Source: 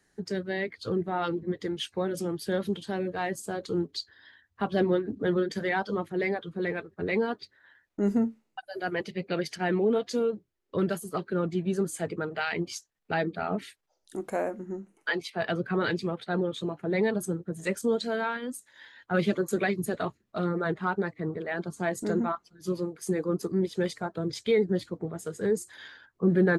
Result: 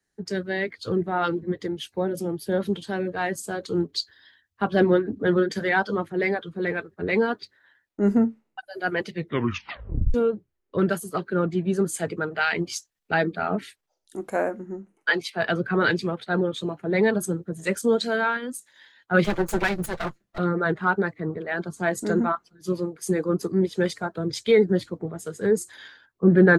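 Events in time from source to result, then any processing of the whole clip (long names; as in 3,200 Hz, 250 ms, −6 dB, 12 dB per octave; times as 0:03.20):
0:01.67–0:02.61: gain on a spectral selection 1,000–9,900 Hz −6 dB
0:09.12: tape stop 1.02 s
0:19.24–0:20.38: lower of the sound and its delayed copy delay 5.8 ms
whole clip: dynamic equaliser 1,500 Hz, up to +5 dB, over −48 dBFS, Q 3.8; multiband upward and downward expander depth 40%; level +4.5 dB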